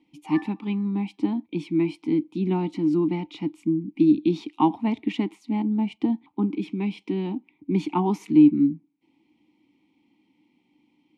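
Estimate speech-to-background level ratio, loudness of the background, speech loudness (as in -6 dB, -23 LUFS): 19.0 dB, -43.5 LUFS, -24.5 LUFS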